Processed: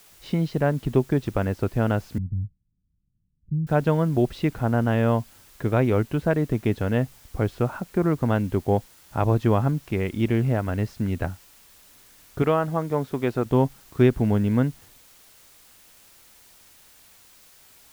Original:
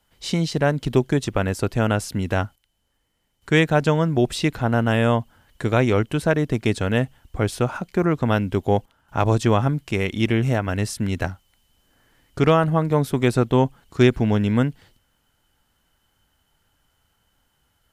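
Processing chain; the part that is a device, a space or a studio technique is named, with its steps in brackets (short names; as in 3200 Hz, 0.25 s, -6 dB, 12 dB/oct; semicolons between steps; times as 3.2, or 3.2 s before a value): cassette deck with a dirty head (tape spacing loss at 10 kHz 31 dB; wow and flutter 27 cents; white noise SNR 29 dB); 2.18–3.67 inverse Chebyshev low-pass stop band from 1000 Hz, stop band 80 dB; 12.42–13.46 low shelf 200 Hz -10.5 dB; gain -1 dB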